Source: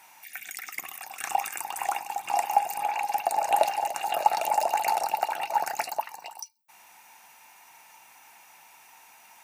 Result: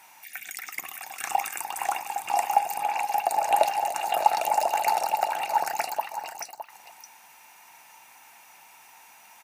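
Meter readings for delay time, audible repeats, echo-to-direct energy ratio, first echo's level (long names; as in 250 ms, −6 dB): 613 ms, 1, −10.0 dB, −10.0 dB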